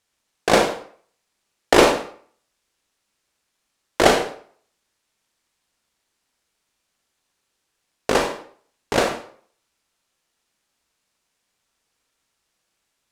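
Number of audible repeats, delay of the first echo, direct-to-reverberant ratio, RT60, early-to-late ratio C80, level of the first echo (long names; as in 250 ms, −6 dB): no echo audible, no echo audible, 3.5 dB, 0.55 s, 11.0 dB, no echo audible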